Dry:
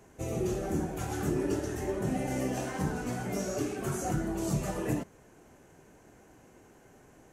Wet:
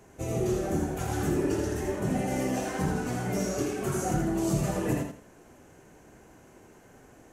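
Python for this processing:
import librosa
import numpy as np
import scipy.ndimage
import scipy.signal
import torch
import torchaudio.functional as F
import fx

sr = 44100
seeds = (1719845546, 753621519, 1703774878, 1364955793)

y = fx.echo_feedback(x, sr, ms=82, feedback_pct=25, wet_db=-5)
y = F.gain(torch.from_numpy(y), 2.0).numpy()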